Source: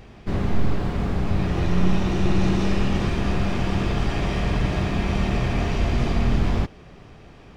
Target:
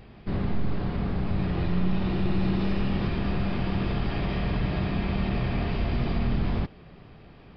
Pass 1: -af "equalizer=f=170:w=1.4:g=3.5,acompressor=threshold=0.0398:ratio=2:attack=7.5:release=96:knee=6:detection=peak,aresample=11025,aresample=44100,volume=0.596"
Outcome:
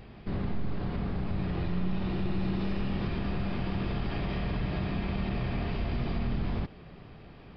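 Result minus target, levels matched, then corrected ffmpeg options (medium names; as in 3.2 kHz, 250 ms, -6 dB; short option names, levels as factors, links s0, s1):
compression: peak gain reduction +5.5 dB
-af "equalizer=f=170:w=1.4:g=3.5,acompressor=threshold=0.141:ratio=2:attack=7.5:release=96:knee=6:detection=peak,aresample=11025,aresample=44100,volume=0.596"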